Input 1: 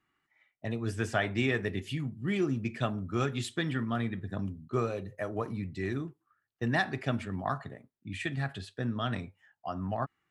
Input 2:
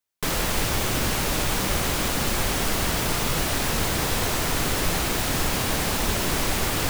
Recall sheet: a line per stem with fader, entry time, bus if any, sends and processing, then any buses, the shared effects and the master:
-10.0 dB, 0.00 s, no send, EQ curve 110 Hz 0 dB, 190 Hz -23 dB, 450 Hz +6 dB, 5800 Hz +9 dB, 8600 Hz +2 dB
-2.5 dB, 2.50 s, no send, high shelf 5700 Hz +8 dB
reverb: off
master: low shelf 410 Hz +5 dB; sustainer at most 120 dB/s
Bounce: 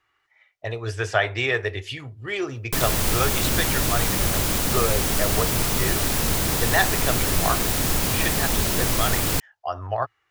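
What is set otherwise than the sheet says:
stem 1 -10.0 dB -> +1.0 dB; master: missing sustainer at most 120 dB/s

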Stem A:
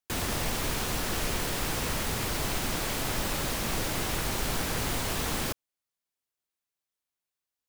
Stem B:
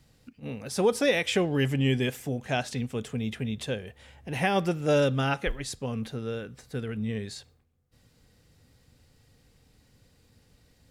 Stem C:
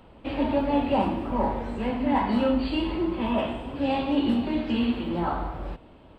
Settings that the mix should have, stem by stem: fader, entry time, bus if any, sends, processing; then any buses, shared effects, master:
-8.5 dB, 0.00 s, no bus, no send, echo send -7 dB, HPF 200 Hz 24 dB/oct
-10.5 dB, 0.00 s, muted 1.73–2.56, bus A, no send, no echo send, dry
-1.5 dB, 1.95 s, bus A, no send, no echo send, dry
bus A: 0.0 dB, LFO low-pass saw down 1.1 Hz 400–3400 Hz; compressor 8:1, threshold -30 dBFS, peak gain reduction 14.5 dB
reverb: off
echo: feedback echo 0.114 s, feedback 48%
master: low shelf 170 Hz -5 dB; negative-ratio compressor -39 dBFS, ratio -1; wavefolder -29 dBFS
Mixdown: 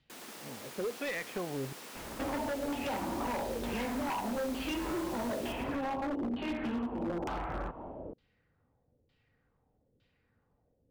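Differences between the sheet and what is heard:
stem A -8.5 dB -> -16.0 dB; stem C -1.5 dB -> +6.0 dB; master: missing negative-ratio compressor -39 dBFS, ratio -1

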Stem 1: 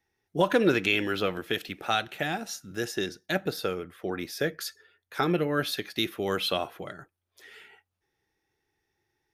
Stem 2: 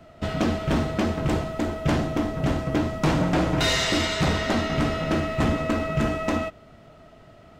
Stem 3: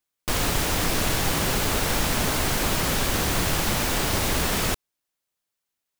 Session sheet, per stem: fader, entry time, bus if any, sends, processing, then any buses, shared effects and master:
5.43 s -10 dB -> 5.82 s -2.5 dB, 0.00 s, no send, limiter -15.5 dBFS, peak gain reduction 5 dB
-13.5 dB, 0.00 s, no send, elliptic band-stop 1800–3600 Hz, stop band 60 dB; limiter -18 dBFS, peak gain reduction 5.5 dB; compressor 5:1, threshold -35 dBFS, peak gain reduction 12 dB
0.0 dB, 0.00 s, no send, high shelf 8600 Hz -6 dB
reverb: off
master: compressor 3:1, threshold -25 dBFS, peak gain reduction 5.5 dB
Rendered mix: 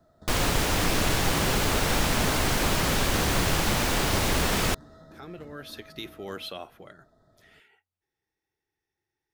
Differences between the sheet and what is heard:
stem 1 -10.0 dB -> -16.0 dB; master: missing compressor 3:1, threshold -25 dBFS, peak gain reduction 5.5 dB

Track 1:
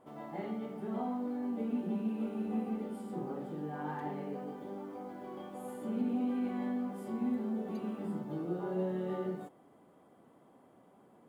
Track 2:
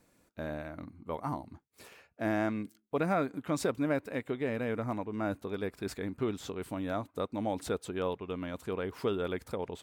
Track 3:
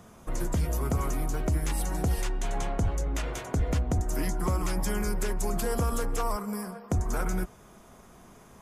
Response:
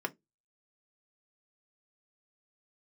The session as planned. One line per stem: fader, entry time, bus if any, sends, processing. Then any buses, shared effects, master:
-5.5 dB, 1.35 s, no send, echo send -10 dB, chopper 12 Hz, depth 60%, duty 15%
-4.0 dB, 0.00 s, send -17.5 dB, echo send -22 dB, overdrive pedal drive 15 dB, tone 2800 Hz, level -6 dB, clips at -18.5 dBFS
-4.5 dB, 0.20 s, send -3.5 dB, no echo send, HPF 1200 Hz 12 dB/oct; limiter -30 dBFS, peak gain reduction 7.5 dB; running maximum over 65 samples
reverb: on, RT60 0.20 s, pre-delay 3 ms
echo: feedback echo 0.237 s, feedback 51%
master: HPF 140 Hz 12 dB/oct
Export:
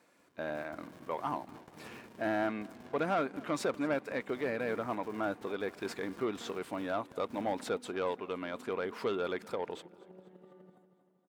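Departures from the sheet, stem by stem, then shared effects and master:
stem 1 -5.5 dB -> -15.0 dB; reverb return -10.0 dB

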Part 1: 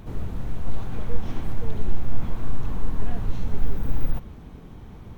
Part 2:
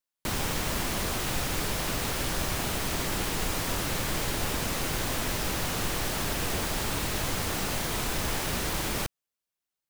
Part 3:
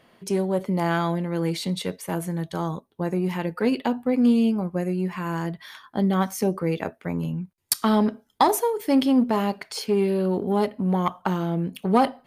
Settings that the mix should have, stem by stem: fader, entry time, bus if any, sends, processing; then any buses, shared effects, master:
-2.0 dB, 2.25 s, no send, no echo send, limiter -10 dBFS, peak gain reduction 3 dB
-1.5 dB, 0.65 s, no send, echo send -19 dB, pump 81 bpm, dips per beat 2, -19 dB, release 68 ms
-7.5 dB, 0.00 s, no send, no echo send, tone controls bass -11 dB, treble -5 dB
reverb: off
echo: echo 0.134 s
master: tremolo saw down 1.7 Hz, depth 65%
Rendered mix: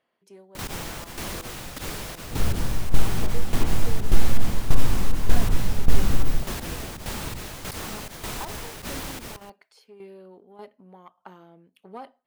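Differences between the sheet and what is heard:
stem 1 -2.0 dB -> +7.0 dB; stem 2: entry 0.65 s -> 0.30 s; stem 3 -7.5 dB -> -17.0 dB

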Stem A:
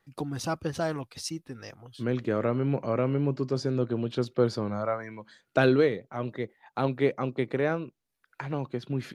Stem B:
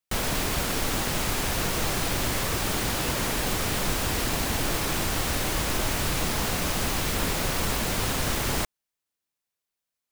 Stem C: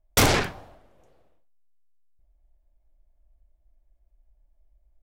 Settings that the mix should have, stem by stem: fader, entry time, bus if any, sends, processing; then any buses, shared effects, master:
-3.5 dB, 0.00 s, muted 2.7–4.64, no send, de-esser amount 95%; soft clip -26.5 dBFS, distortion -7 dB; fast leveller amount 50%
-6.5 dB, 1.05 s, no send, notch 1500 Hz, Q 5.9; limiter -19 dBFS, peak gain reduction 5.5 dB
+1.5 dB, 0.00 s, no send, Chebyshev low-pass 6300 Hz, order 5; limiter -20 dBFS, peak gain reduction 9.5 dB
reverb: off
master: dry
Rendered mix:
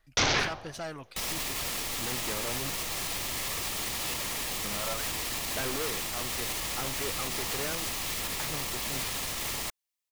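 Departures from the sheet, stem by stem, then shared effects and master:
stem A: missing fast leveller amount 50%; master: extra tilt shelf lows -5.5 dB, about 890 Hz

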